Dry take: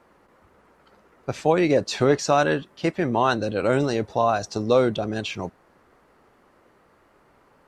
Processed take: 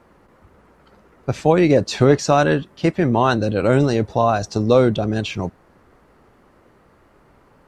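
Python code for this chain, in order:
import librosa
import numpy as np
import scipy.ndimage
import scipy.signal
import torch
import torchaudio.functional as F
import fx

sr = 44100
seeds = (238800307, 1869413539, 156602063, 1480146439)

y = fx.low_shelf(x, sr, hz=230.0, db=9.0)
y = y * 10.0 ** (2.5 / 20.0)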